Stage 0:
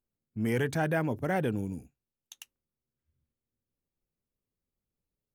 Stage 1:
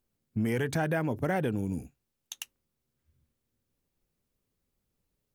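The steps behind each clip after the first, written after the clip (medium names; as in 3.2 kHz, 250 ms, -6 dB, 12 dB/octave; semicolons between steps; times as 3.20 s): compression, threshold -34 dBFS, peak gain reduction 9.5 dB; trim +8 dB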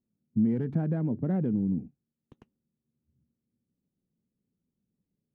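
tracing distortion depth 0.25 ms; band-pass filter 200 Hz, Q 2.1; tape noise reduction on one side only decoder only; trim +7 dB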